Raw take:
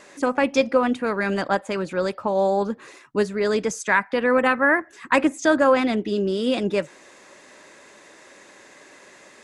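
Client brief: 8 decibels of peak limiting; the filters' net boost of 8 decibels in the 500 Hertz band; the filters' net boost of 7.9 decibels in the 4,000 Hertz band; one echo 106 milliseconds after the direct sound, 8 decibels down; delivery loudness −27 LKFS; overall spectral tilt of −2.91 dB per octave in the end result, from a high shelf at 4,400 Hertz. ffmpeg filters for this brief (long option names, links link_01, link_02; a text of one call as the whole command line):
ffmpeg -i in.wav -af "equalizer=frequency=500:width_type=o:gain=9,equalizer=frequency=4000:width_type=o:gain=8.5,highshelf=frequency=4400:gain=3,alimiter=limit=-7.5dB:level=0:latency=1,aecho=1:1:106:0.398,volume=-9dB" out.wav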